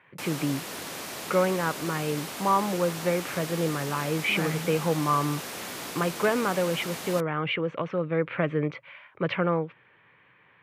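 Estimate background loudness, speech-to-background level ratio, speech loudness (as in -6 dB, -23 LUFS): -35.5 LUFS, 7.5 dB, -28.0 LUFS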